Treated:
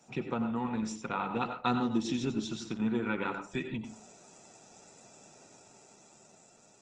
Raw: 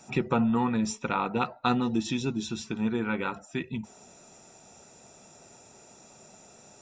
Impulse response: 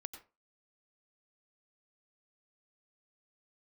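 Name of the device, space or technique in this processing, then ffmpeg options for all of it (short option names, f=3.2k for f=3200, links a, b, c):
far-field microphone of a smart speaker: -filter_complex "[0:a]asettb=1/sr,asplit=3[a][b][c];[a]atrim=end=1.714[d];[b]atrim=start=1.71:end=3.03,asetpts=PTS-STARTPTS,afade=t=in:d=0.004:c=qsin,afade=t=out:st=1.316:d=0.004:c=qsin,adynamicequalizer=threshold=0.00158:dfrequency=2400:dqfactor=4.4:tfrequency=2400:tqfactor=4.4:attack=5:release=100:ratio=0.375:range=2:mode=cutabove:tftype=bell[e];[c]atrim=start=3.026[f];[d][e]acrossfade=d=0.004:c1=hsin:c2=qsin[g];[g][f]acrossfade=d=0.004:c1=qsin:c2=hsin[h];[1:a]atrim=start_sample=2205[i];[h][i]afir=irnorm=-1:irlink=0,highpass=f=100:w=0.5412,highpass=f=100:w=1.3066,dynaudnorm=f=290:g=9:m=5dB,volume=-3.5dB" -ar 48000 -c:a libopus -b:a 16k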